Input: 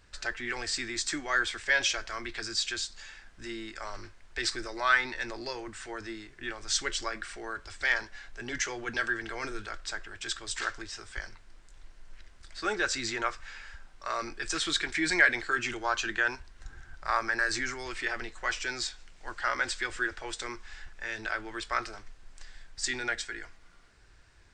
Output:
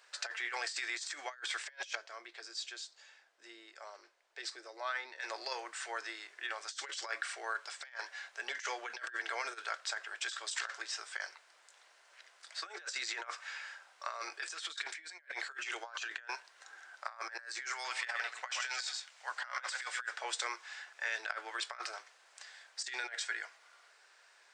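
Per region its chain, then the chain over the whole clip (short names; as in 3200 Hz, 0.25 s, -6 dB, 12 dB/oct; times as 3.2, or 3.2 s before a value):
1.95–5.2 LPF 1900 Hz 6 dB/oct + bell 1400 Hz -12 dB 2.8 oct
17.72–20.13 HPF 640 Hz + echo 0.127 s -9.5 dB
whole clip: negative-ratio compressor -36 dBFS, ratio -0.5; inverse Chebyshev high-pass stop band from 160 Hz, stop band 60 dB; gain -2 dB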